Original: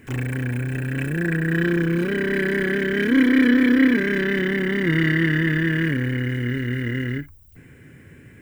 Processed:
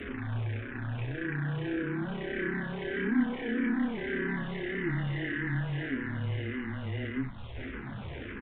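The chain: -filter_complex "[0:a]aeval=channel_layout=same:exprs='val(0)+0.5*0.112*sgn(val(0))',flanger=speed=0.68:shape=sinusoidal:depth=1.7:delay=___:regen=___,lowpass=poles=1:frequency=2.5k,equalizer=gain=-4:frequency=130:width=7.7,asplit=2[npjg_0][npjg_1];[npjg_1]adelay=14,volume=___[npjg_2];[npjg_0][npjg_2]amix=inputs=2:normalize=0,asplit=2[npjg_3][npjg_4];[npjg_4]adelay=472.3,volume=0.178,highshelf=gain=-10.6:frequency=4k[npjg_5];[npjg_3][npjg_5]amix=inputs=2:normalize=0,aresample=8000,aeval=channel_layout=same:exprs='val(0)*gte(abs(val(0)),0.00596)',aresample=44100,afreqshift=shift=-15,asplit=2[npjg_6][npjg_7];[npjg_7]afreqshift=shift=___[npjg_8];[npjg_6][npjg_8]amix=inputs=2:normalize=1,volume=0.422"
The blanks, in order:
7, 76, 0.398, -1.7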